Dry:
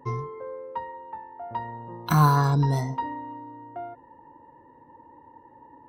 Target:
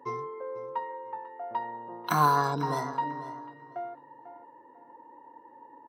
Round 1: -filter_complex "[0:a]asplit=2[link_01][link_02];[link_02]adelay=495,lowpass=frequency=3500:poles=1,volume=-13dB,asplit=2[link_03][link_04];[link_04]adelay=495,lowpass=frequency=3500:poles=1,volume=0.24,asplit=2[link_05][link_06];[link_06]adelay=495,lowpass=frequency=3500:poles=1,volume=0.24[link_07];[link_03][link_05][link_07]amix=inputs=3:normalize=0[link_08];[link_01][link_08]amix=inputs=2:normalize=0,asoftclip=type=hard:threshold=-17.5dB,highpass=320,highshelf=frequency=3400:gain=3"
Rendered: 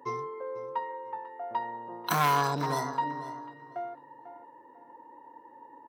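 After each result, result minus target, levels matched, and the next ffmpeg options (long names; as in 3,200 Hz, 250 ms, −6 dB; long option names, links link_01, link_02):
hard clipping: distortion +28 dB; 8,000 Hz band +5.0 dB
-filter_complex "[0:a]asplit=2[link_01][link_02];[link_02]adelay=495,lowpass=frequency=3500:poles=1,volume=-13dB,asplit=2[link_03][link_04];[link_04]adelay=495,lowpass=frequency=3500:poles=1,volume=0.24,asplit=2[link_05][link_06];[link_06]adelay=495,lowpass=frequency=3500:poles=1,volume=0.24[link_07];[link_03][link_05][link_07]amix=inputs=3:normalize=0[link_08];[link_01][link_08]amix=inputs=2:normalize=0,asoftclip=type=hard:threshold=-10dB,highpass=320,highshelf=frequency=3400:gain=3"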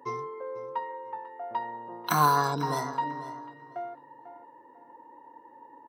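8,000 Hz band +4.5 dB
-filter_complex "[0:a]asplit=2[link_01][link_02];[link_02]adelay=495,lowpass=frequency=3500:poles=1,volume=-13dB,asplit=2[link_03][link_04];[link_04]adelay=495,lowpass=frequency=3500:poles=1,volume=0.24,asplit=2[link_05][link_06];[link_06]adelay=495,lowpass=frequency=3500:poles=1,volume=0.24[link_07];[link_03][link_05][link_07]amix=inputs=3:normalize=0[link_08];[link_01][link_08]amix=inputs=2:normalize=0,asoftclip=type=hard:threshold=-10dB,highpass=320,highshelf=frequency=3400:gain=-3.5"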